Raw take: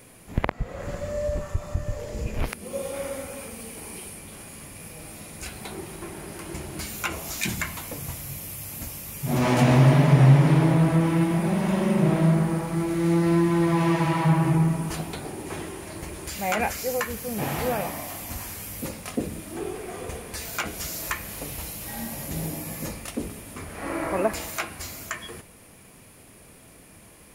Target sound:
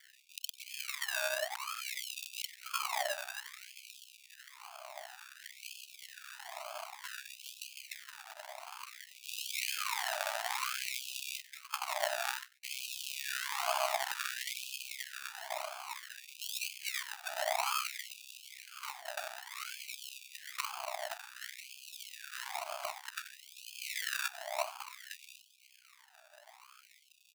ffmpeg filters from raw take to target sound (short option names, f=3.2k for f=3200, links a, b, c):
-filter_complex "[0:a]equalizer=f=630:t=o:w=0.61:g=15,asplit=3[a][b][c];[a]afade=t=out:st=11.4:d=0.02[d];[b]agate=range=-49dB:threshold=-16dB:ratio=16:detection=peak,afade=t=in:st=11.4:d=0.02,afade=t=out:st=12.63:d=0.02[e];[c]afade=t=in:st=12.63:d=0.02[f];[d][e][f]amix=inputs=3:normalize=0,acompressor=threshold=-19dB:ratio=8,aeval=exprs='val(0)*sin(2*PI*32*n/s)':c=same,aeval=exprs='max(val(0),0)':c=same,asettb=1/sr,asplit=3[g][h][i];[g]atrim=end=6.544[j];[h]atrim=start=6.54:end=7.96,asetpts=PTS-STARTPTS,afade=t=in:d=0.004:c=qsin,afade=t=out:st=1.416:d=0.004:c=qsin,highpass=140,lowpass=4.2k[k];[i]atrim=start=7.956[l];[j][k]acrossfade=d=0.004:c1=hsin:c2=qsin[m];[m][l]acrossfade=d=0.004:c1=qsin:c2=hsin,acrusher=samples=33:mix=1:aa=0.000001:lfo=1:lforange=19.8:lforate=1,aecho=1:1:94:0.106,afftfilt=real='re*gte(b*sr/1024,570*pow(2500/570,0.5+0.5*sin(2*PI*0.56*pts/sr)))':imag='im*gte(b*sr/1024,570*pow(2500/570,0.5+0.5*sin(2*PI*0.56*pts/sr)))':win_size=1024:overlap=0.75,volume=1dB"